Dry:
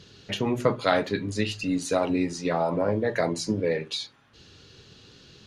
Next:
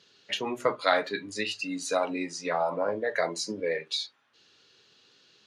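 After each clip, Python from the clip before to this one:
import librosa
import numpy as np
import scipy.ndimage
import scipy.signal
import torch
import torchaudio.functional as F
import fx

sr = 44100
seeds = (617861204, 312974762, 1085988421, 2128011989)

y = fx.weighting(x, sr, curve='A')
y = fx.noise_reduce_blind(y, sr, reduce_db=8)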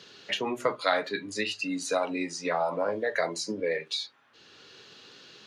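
y = fx.band_squash(x, sr, depth_pct=40)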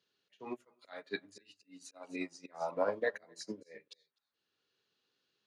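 y = fx.auto_swell(x, sr, attack_ms=246.0)
y = y + 10.0 ** (-15.0 / 20.0) * np.pad(y, (int(252 * sr / 1000.0), 0))[:len(y)]
y = fx.upward_expand(y, sr, threshold_db=-45.0, expansion=2.5)
y = y * librosa.db_to_amplitude(-1.5)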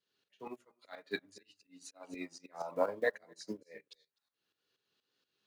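y = fx.block_float(x, sr, bits=7)
y = fx.wow_flutter(y, sr, seeds[0], rate_hz=2.1, depth_cents=27.0)
y = fx.tremolo_shape(y, sr, shape='saw_up', hz=4.2, depth_pct=75)
y = y * librosa.db_to_amplitude(2.5)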